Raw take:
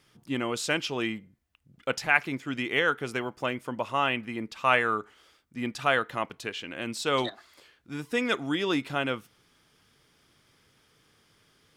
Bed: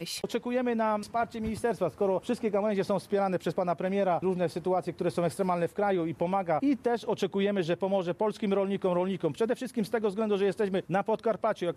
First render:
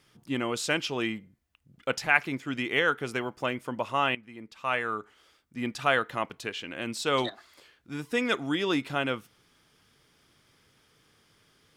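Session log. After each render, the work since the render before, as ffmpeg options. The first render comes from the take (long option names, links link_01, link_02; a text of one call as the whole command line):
ffmpeg -i in.wav -filter_complex "[0:a]asplit=2[link_01][link_02];[link_01]atrim=end=4.15,asetpts=PTS-STARTPTS,afade=type=out:start_time=4.146:duration=0.004:curve=hsin:silence=0.177828[link_03];[link_02]atrim=start=4.15,asetpts=PTS-STARTPTS,afade=type=in:duration=1.47:silence=0.177828[link_04];[link_03][link_04]concat=n=2:v=0:a=1" out.wav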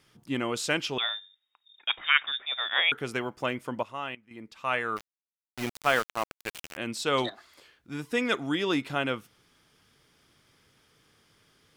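ffmpeg -i in.wav -filter_complex "[0:a]asettb=1/sr,asplit=3[link_01][link_02][link_03];[link_01]atrim=end=0.984[link_04];[link_02]atrim=start=0.98:end=2.92,asetpts=PTS-STARTPTS,afade=type=in:duration=0.004:curve=qsin,afade=type=out:start_time=1.936:duration=0.004:curve=qsin,lowpass=frequency=3200:width_type=q:width=0.5098,lowpass=frequency=3200:width_type=q:width=0.6013,lowpass=frequency=3200:width_type=q:width=0.9,lowpass=frequency=3200:width_type=q:width=2.563,afreqshift=-3800[link_05];[link_03]atrim=start=2.916[link_06];[link_04][link_05]acrossfade=duration=0.004:curve1=hsin:curve2=qsin[link_07];[link_07][link_06]acrossfade=duration=0.004:curve1=qsin:curve2=hsin,asplit=3[link_08][link_09][link_10];[link_08]afade=type=out:start_time=4.96:duration=0.02[link_11];[link_09]aeval=exprs='val(0)*gte(abs(val(0)),0.0316)':channel_layout=same,afade=type=in:start_time=4.96:duration=0.02,afade=type=out:start_time=6.76:duration=0.02[link_12];[link_10]afade=type=in:start_time=6.76:duration=0.02[link_13];[link_11][link_12][link_13]amix=inputs=3:normalize=0,asplit=3[link_14][link_15][link_16];[link_14]atrim=end=3.832[link_17];[link_15]atrim=start=3.828:end=4.312,asetpts=PTS-STARTPTS,volume=-9.5dB[link_18];[link_16]atrim=start=4.308[link_19];[link_17][link_18]acrossfade=duration=0.004:curve1=hsin:curve2=hsin[link_20];[link_20][link_19]acrossfade=duration=0.004:curve1=hsin:curve2=hsin" out.wav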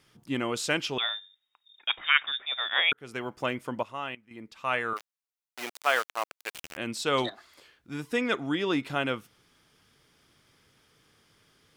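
ffmpeg -i in.wav -filter_complex "[0:a]asettb=1/sr,asplit=3[link_01][link_02][link_03];[link_01]atrim=end=4.934[link_04];[link_02]atrim=start=4.93:end=6.54,asetpts=PTS-STARTPTS,afade=type=in:duration=0.004:curve=qsin,afade=type=out:start_time=1.606:duration=0.004:curve=qsin,highpass=500[link_05];[link_03]atrim=start=6.536[link_06];[link_04][link_05]acrossfade=duration=0.004:curve1=hsin:curve2=qsin[link_07];[link_07][link_06]acrossfade=duration=0.004:curve1=qsin:curve2=hsin,asettb=1/sr,asplit=3[link_08][link_09][link_10];[link_08]atrim=end=8.174[link_11];[link_09]atrim=start=8.17:end=8.83,asetpts=PTS-STARTPTS,afade=type=in:duration=0.004:curve=qsin,afade=type=out:start_time=0.656:duration=0.004:curve=qsin,highshelf=frequency=4700:gain=-7[link_12];[link_10]atrim=start=8.826[link_13];[link_11][link_12]acrossfade=duration=0.004:curve1=hsin:curve2=qsin[link_14];[link_14][link_13]acrossfade=duration=0.004:curve1=qsin:curve2=hsin,asplit=2[link_15][link_16];[link_15]atrim=end=2.93,asetpts=PTS-STARTPTS,afade=type=out:start_time=2.926:duration=0.004:curve=hsin[link_17];[link_16]atrim=start=2.93,asetpts=PTS-STARTPTS,afade=type=in:duration=0.4[link_18];[link_17][link_18]concat=n=2:v=0:a=1" out.wav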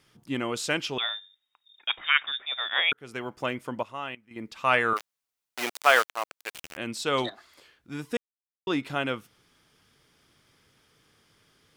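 ffmpeg -i in.wav -filter_complex "[0:a]asettb=1/sr,asplit=3[link_01][link_02][link_03];[link_01]atrim=end=4.364[link_04];[link_02]atrim=start=4.36:end=6.05,asetpts=PTS-STARTPTS,afade=type=in:duration=0.004:curve=qsin,afade=type=out:start_time=1.686:duration=0.004:curve=qsin,acontrast=60[link_05];[link_03]atrim=start=6.046[link_06];[link_04][link_05]acrossfade=duration=0.004:curve1=hsin:curve2=qsin[link_07];[link_07][link_06]acrossfade=duration=0.004:curve1=qsin:curve2=hsin,asplit=3[link_08][link_09][link_10];[link_08]atrim=end=8.17,asetpts=PTS-STARTPTS,afade=type=out:start_time=8.166:duration=0.004:curve=hsin[link_11];[link_09]atrim=start=8.17:end=8.67,asetpts=PTS-STARTPTS,volume=0[link_12];[link_10]atrim=start=8.67,asetpts=PTS-STARTPTS,afade=type=in:duration=0.004:curve=hsin[link_13];[link_11][link_12][link_13]concat=n=3:v=0:a=1" out.wav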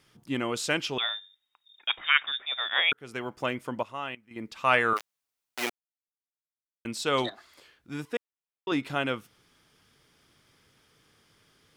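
ffmpeg -i in.wav -filter_complex "[0:a]asettb=1/sr,asplit=3[link_01][link_02][link_03];[link_01]atrim=end=8.054[link_04];[link_02]atrim=start=8.05:end=8.72,asetpts=PTS-STARTPTS,afade=type=in:duration=0.004:curve=qsin,afade=type=out:start_time=0.666:duration=0.004:curve=qsin,bass=frequency=250:gain=-11,treble=frequency=4000:gain=-9[link_05];[link_03]atrim=start=8.716[link_06];[link_04][link_05]acrossfade=duration=0.004:curve1=hsin:curve2=qsin[link_07];[link_07][link_06]acrossfade=duration=0.004:curve1=qsin:curve2=hsin,asplit=3[link_08][link_09][link_10];[link_08]atrim=end=5.7,asetpts=PTS-STARTPTS,afade=type=out:start_time=5.696:duration=0.004:curve=hsin[link_11];[link_09]atrim=start=5.7:end=6.85,asetpts=PTS-STARTPTS,volume=0[link_12];[link_10]atrim=start=6.85,asetpts=PTS-STARTPTS,afade=type=in:duration=0.004:curve=hsin[link_13];[link_11][link_12][link_13]concat=n=3:v=0:a=1" out.wav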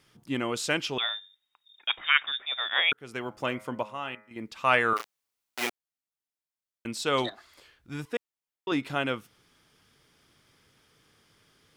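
ffmpeg -i in.wav -filter_complex "[0:a]asettb=1/sr,asplit=3[link_01][link_02][link_03];[link_01]atrim=end=3.274[link_04];[link_02]atrim=start=3.27:end=4.42,asetpts=PTS-STARTPTS,afade=type=in:duration=0.004:curve=qsin,afade=type=out:start_time=1.146:duration=0.004:curve=qsin,bandreject=frequency=105.4:width_type=h:width=4,bandreject=frequency=210.8:width_type=h:width=4,bandreject=frequency=316.2:width_type=h:width=4,bandreject=frequency=421.6:width_type=h:width=4,bandreject=frequency=527:width_type=h:width=4,bandreject=frequency=632.4:width_type=h:width=4,bandreject=frequency=737.8:width_type=h:width=4,bandreject=frequency=843.2:width_type=h:width=4,bandreject=frequency=948.6:width_type=h:width=4,bandreject=frequency=1054:width_type=h:width=4,bandreject=frequency=1159.4:width_type=h:width=4,bandreject=frequency=1264.8:width_type=h:width=4,bandreject=frequency=1370.2:width_type=h:width=4,bandreject=frequency=1475.6:width_type=h:width=4,bandreject=frequency=1581:width_type=h:width=4,bandreject=frequency=1686.4:width_type=h:width=4,bandreject=frequency=1791.8:width_type=h:width=4,bandreject=frequency=1897.2:width_type=h:width=4,bandreject=frequency=2002.6:width_type=h:width=4,bandreject=frequency=2108:width_type=h:width=4,bandreject=frequency=2213.4:width_type=h:width=4,bandreject=frequency=2318.8:width_type=h:width=4,bandreject=frequency=2424.2:width_type=h:width=4,bandreject=frequency=2529.6:width_type=h:width=4[link_05];[link_03]atrim=start=4.416[link_06];[link_04][link_05]acrossfade=duration=0.004:curve1=hsin:curve2=qsin[link_07];[link_07][link_06]acrossfade=duration=0.004:curve1=qsin:curve2=hsin,asettb=1/sr,asplit=3[link_08][link_09][link_10];[link_08]atrim=end=4.964[link_11];[link_09]atrim=start=4.96:end=5.67,asetpts=PTS-STARTPTS,afade=type=in:duration=0.004:curve=qsin,afade=type=out:start_time=0.706:duration=0.004:curve=qsin,asplit=2[link_12][link_13];[link_13]adelay=34,volume=-4dB[link_14];[link_12][link_14]amix=inputs=2:normalize=0,atrim=end_sample=31311[link_15];[link_10]atrim=start=5.666[link_16];[link_11][link_15]acrossfade=duration=0.004:curve1=hsin:curve2=qsin[link_17];[link_17][link_16]acrossfade=duration=0.004:curve1=qsin:curve2=hsin,asettb=1/sr,asplit=3[link_18][link_19][link_20];[link_18]atrim=end=7.164[link_21];[link_19]atrim=start=7.16:end=8.06,asetpts=PTS-STARTPTS,afade=type=in:duration=0.004:curve=qsin,afade=type=out:start_time=0.896:duration=0.004:curve=qsin,asubboost=boost=9.5:cutoff=120[link_22];[link_20]atrim=start=8.056[link_23];[link_21][link_22]acrossfade=duration=0.004:curve1=hsin:curve2=qsin[link_24];[link_24][link_23]acrossfade=duration=0.004:curve1=qsin:curve2=hsin" out.wav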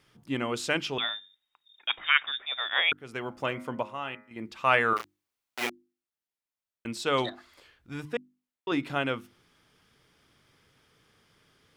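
ffmpeg -i in.wav -af "bass=frequency=250:gain=1,treble=frequency=4000:gain=-4,bandreject=frequency=50:width_type=h:width=6,bandreject=frequency=100:width_type=h:width=6,bandreject=frequency=150:width_type=h:width=6,bandreject=frequency=200:width_type=h:width=6,bandreject=frequency=250:width_type=h:width=6,bandreject=frequency=300:width_type=h:width=6,bandreject=frequency=350:width_type=h:width=6" out.wav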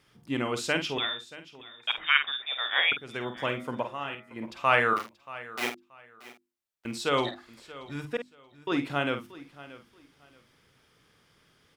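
ffmpeg -i in.wav -filter_complex "[0:a]asplit=2[link_01][link_02];[link_02]adelay=49,volume=-8.5dB[link_03];[link_01][link_03]amix=inputs=2:normalize=0,aecho=1:1:630|1260:0.126|0.029" out.wav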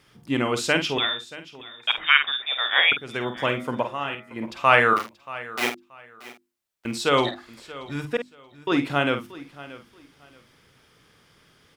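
ffmpeg -i in.wav -af "volume=6dB,alimiter=limit=-1dB:level=0:latency=1" out.wav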